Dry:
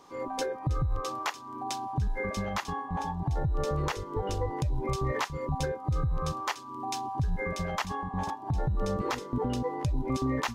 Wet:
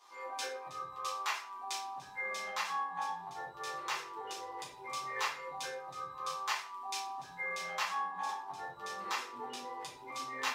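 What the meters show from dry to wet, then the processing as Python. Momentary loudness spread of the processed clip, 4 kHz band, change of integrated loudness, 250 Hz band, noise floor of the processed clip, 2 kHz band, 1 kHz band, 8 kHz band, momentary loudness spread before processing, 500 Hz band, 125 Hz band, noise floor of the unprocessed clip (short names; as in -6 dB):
7 LU, -0.5 dB, -7.0 dB, -23.0 dB, -51 dBFS, -0.5 dB, -3.5 dB, -1.5 dB, 4 LU, -13.0 dB, -33.0 dB, -43 dBFS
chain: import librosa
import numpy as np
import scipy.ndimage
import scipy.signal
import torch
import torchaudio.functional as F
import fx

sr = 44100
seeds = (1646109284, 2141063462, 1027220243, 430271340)

y = scipy.signal.sosfilt(scipy.signal.butter(2, 1100.0, 'highpass', fs=sr, output='sos'), x)
y = fx.room_shoebox(y, sr, seeds[0], volume_m3=49.0, walls='mixed', distance_m=1.4)
y = y * 10.0 ** (-7.0 / 20.0)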